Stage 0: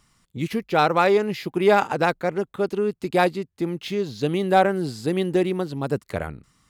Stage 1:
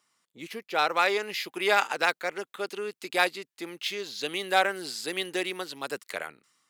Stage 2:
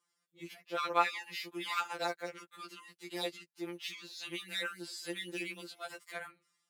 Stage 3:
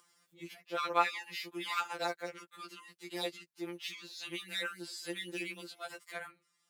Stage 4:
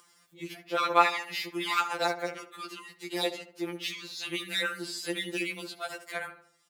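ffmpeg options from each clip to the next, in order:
-filter_complex "[0:a]highpass=400,acrossover=split=1500[s0][s1];[s1]dynaudnorm=f=340:g=5:m=5.31[s2];[s0][s2]amix=inputs=2:normalize=0,volume=0.398"
-af "afftfilt=real='re*2.83*eq(mod(b,8),0)':imag='im*2.83*eq(mod(b,8),0)':win_size=2048:overlap=0.75,volume=0.447"
-af "acompressor=mode=upward:threshold=0.00126:ratio=2.5"
-filter_complex "[0:a]asplit=2[s0][s1];[s1]adelay=75,lowpass=f=1600:p=1,volume=0.282,asplit=2[s2][s3];[s3]adelay=75,lowpass=f=1600:p=1,volume=0.48,asplit=2[s4][s5];[s5]adelay=75,lowpass=f=1600:p=1,volume=0.48,asplit=2[s6][s7];[s7]adelay=75,lowpass=f=1600:p=1,volume=0.48,asplit=2[s8][s9];[s9]adelay=75,lowpass=f=1600:p=1,volume=0.48[s10];[s0][s2][s4][s6][s8][s10]amix=inputs=6:normalize=0,volume=2.24"

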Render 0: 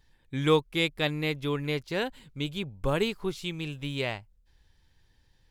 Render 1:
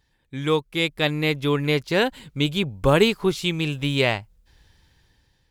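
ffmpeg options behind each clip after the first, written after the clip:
-af "highpass=f=51:p=1,dynaudnorm=f=260:g=7:m=3.76"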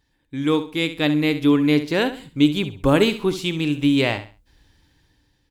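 -filter_complex "[0:a]equalizer=f=290:t=o:w=0.23:g=12.5,asplit=2[s0][s1];[s1]aecho=0:1:67|134|201:0.251|0.0728|0.0211[s2];[s0][s2]amix=inputs=2:normalize=0,volume=0.891"

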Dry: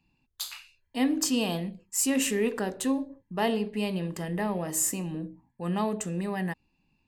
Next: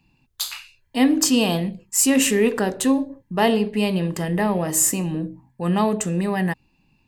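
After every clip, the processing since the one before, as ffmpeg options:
-af "equalizer=f=130:w=7.1:g=6.5,volume=2.66"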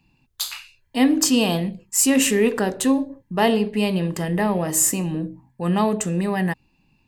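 -af anull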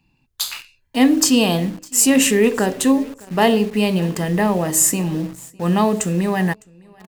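-filter_complex "[0:a]aecho=1:1:607|1214:0.0708|0.0255,asplit=2[s0][s1];[s1]acrusher=bits=5:mix=0:aa=0.000001,volume=0.631[s2];[s0][s2]amix=inputs=2:normalize=0,volume=0.891"

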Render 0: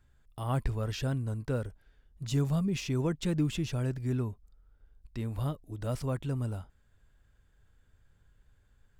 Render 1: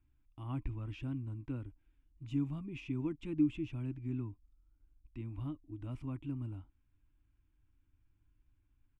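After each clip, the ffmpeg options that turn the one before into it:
-af "firequalizer=gain_entry='entry(120,0);entry(190,-9);entry(300,11);entry(440,-16);entry(990,-3);entry(1700,-12);entry(2400,2);entry(4300,-19);entry(8800,-18);entry(14000,-27)':delay=0.05:min_phase=1,volume=0.422"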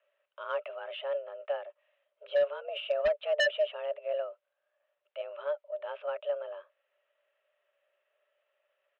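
-af "highpass=f=280:t=q:w=0.5412,highpass=f=280:t=q:w=1.307,lowpass=f=3000:t=q:w=0.5176,lowpass=f=3000:t=q:w=0.7071,lowpass=f=3000:t=q:w=1.932,afreqshift=290,aeval=exprs='0.0668*(cos(1*acos(clip(val(0)/0.0668,-1,1)))-cos(1*PI/2))+0.00376*(cos(7*acos(clip(val(0)/0.0668,-1,1)))-cos(7*PI/2))':c=same,aeval=exprs='0.0668*sin(PI/2*3.16*val(0)/0.0668)':c=same,volume=1.33"

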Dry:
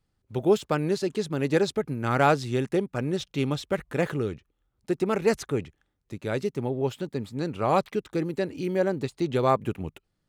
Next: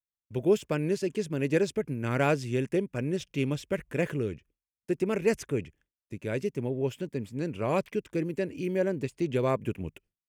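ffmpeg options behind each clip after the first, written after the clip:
-af "agate=range=0.0224:threshold=0.00282:ratio=3:detection=peak,equalizer=f=800:t=o:w=0.33:g=-10,equalizer=f=1250:t=o:w=0.33:g=-9,equalizer=f=2500:t=o:w=0.33:g=4,equalizer=f=4000:t=o:w=0.33:g=-11,volume=0.794"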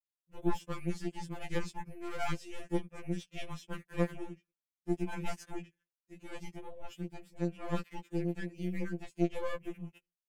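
-af "aeval=exprs='0.224*(cos(1*acos(clip(val(0)/0.224,-1,1)))-cos(1*PI/2))+0.0501*(cos(4*acos(clip(val(0)/0.224,-1,1)))-cos(4*PI/2))':c=same,afftfilt=real='re*2.83*eq(mod(b,8),0)':imag='im*2.83*eq(mod(b,8),0)':win_size=2048:overlap=0.75,volume=0.447"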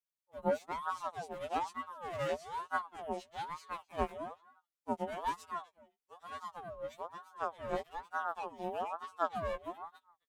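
-filter_complex "[0:a]asplit=2[s0][s1];[s1]adelay=262.4,volume=0.1,highshelf=f=4000:g=-5.9[s2];[s0][s2]amix=inputs=2:normalize=0,aeval=exprs='val(0)*sin(2*PI*830*n/s+830*0.35/1.1*sin(2*PI*1.1*n/s))':c=same,volume=0.891"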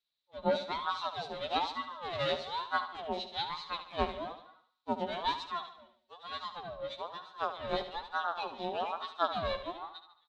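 -filter_complex "[0:a]lowpass=f=3900:t=q:w=10,asplit=2[s0][s1];[s1]aecho=0:1:73|146|219|292|365:0.282|0.132|0.0623|0.0293|0.0138[s2];[s0][s2]amix=inputs=2:normalize=0,volume=1.26"

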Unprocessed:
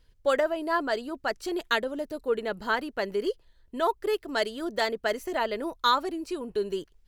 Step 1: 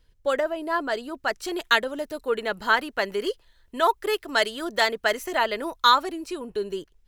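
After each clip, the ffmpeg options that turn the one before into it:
-filter_complex "[0:a]bandreject=f=4600:w=23,acrossover=split=780[s0][s1];[s1]dynaudnorm=f=220:g=11:m=2.51[s2];[s0][s2]amix=inputs=2:normalize=0"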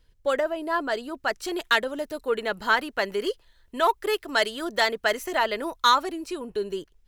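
-af "asoftclip=type=tanh:threshold=0.398"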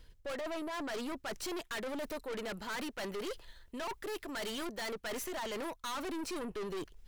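-af "areverse,acompressor=threshold=0.0251:ratio=6,areverse,aeval=exprs='(tanh(158*val(0)+0.35)-tanh(0.35))/158':c=same,volume=2.24"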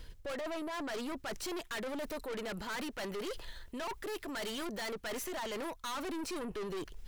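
-af "alimiter=level_in=8.41:limit=0.0631:level=0:latency=1:release=47,volume=0.119,volume=2.51"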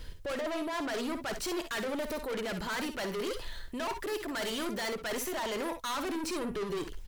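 -filter_complex "[0:a]aeval=exprs='if(lt(val(0),0),0.708*val(0),val(0))':c=same,asplit=2[s0][s1];[s1]aecho=0:1:54|66:0.299|0.251[s2];[s0][s2]amix=inputs=2:normalize=0,volume=2"

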